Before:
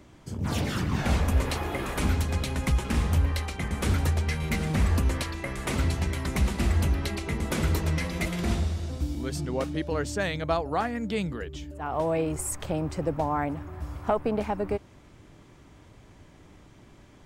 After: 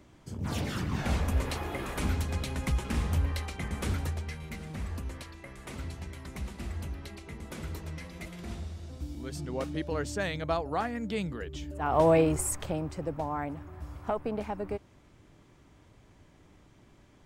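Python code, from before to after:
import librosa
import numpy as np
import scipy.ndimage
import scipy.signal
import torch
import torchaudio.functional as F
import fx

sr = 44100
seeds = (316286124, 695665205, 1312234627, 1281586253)

y = fx.gain(x, sr, db=fx.line((3.76, -4.5), (4.55, -13.0), (8.47, -13.0), (9.75, -3.5), (11.37, -3.5), (12.09, 5.5), (12.94, -6.0)))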